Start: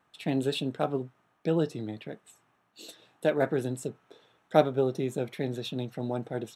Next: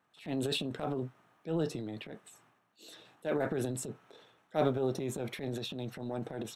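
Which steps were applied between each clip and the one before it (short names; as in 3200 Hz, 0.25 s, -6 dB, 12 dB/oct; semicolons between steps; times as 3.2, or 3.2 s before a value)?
HPF 79 Hz; transient shaper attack -9 dB, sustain +8 dB; gain -4.5 dB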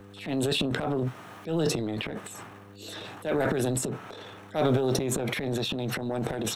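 transient shaper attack -6 dB, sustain +11 dB; buzz 100 Hz, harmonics 5, -65 dBFS -3 dB/oct; three-band squash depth 40%; gain +6.5 dB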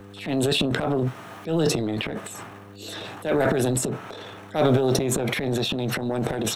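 on a send at -5.5 dB: band-pass 660 Hz, Q 5.9 + reverb RT60 0.35 s, pre-delay 3 ms; on the sum: gain +4.5 dB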